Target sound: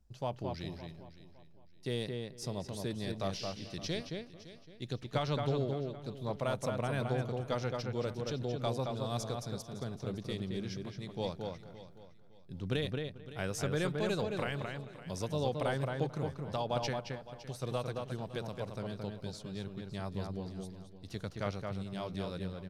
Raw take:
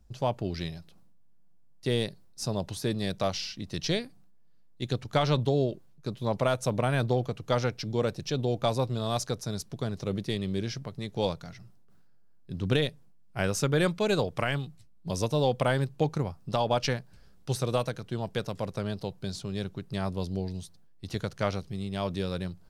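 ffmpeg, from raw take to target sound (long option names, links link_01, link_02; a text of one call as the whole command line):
ffmpeg -i in.wav -filter_complex "[0:a]asplit=2[link_01][link_02];[link_02]aecho=0:1:561|1122|1683:0.158|0.0428|0.0116[link_03];[link_01][link_03]amix=inputs=2:normalize=0,asettb=1/sr,asplit=3[link_04][link_05][link_06];[link_04]atrim=end=16.934[link_07];[link_05]atrim=start=16.93:end=17.63,asetpts=PTS-STARTPTS,afade=type=in:duration=0.004:curve=qsin,afade=type=out:start_time=0.696:duration=0.004:curve=qsin,acompressor=threshold=-30dB:ratio=6[link_08];[link_06]atrim=start=17.626[link_09];[link_07][link_08]acrossfade=duration=0.004:curve1=hsin:curve2=qsin[link_10];[link_10][link_09]acrossfade=duration=0.004:curve1=qsin:curve2=hsin,asplit=2[link_11][link_12];[link_12]adelay=221,lowpass=frequency=2700:poles=1,volume=-3.5dB,asplit=2[link_13][link_14];[link_14]adelay=221,lowpass=frequency=2700:poles=1,volume=0.17,asplit=2[link_15][link_16];[link_16]adelay=221,lowpass=frequency=2700:poles=1,volume=0.17[link_17];[link_13][link_15][link_17]amix=inputs=3:normalize=0[link_18];[link_11][link_18]amix=inputs=2:normalize=0,volume=-8.5dB" out.wav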